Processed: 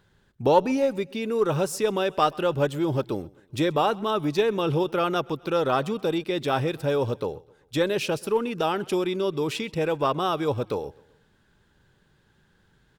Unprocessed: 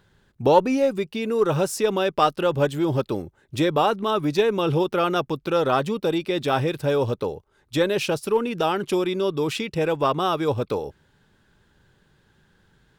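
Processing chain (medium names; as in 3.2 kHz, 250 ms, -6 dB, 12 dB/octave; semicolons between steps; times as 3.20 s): feedback delay 129 ms, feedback 49%, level -24 dB; trim -2.5 dB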